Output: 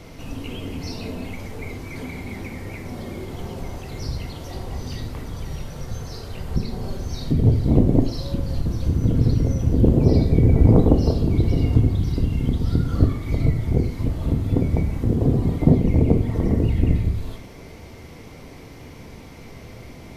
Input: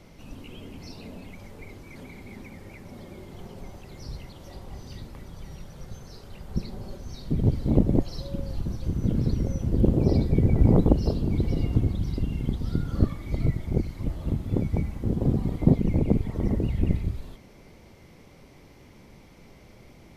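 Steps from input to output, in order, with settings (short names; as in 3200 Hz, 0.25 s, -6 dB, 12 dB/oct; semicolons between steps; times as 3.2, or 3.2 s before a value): in parallel at +2 dB: compressor, threshold -33 dBFS, peak gain reduction 19.5 dB; on the sum: reverb, pre-delay 3 ms, DRR 4.5 dB; gain +2 dB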